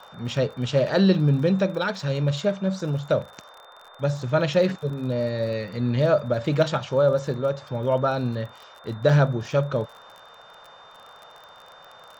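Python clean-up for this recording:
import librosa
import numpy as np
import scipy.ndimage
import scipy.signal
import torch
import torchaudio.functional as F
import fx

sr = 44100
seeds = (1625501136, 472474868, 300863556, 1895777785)

y = fx.fix_declick_ar(x, sr, threshold=6.5)
y = fx.notch(y, sr, hz=3600.0, q=30.0)
y = fx.noise_reduce(y, sr, print_start_s=3.49, print_end_s=3.99, reduce_db=20.0)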